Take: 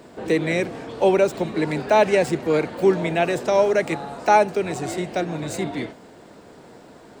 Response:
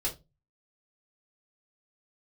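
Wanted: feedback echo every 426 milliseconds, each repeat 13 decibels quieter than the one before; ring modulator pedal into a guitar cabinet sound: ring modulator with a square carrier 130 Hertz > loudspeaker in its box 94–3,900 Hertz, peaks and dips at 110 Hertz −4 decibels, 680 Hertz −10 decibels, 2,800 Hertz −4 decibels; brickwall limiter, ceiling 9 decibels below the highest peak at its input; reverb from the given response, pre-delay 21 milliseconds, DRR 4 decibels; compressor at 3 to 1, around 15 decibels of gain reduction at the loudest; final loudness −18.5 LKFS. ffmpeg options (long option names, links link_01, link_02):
-filter_complex "[0:a]acompressor=threshold=-33dB:ratio=3,alimiter=level_in=3.5dB:limit=-24dB:level=0:latency=1,volume=-3.5dB,aecho=1:1:426|852|1278:0.224|0.0493|0.0108,asplit=2[link_01][link_02];[1:a]atrim=start_sample=2205,adelay=21[link_03];[link_02][link_03]afir=irnorm=-1:irlink=0,volume=-8.5dB[link_04];[link_01][link_04]amix=inputs=2:normalize=0,aeval=exprs='val(0)*sgn(sin(2*PI*130*n/s))':channel_layout=same,highpass=94,equalizer=frequency=110:width_type=q:width=4:gain=-4,equalizer=frequency=680:width_type=q:width=4:gain=-10,equalizer=frequency=2800:width_type=q:width=4:gain=-4,lowpass=frequency=3900:width=0.5412,lowpass=frequency=3900:width=1.3066,volume=19dB"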